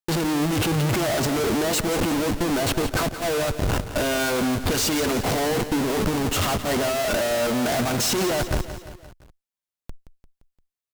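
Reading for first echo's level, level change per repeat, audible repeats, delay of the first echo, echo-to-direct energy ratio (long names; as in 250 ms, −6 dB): −12.0 dB, −5.0 dB, 4, 173 ms, −10.5 dB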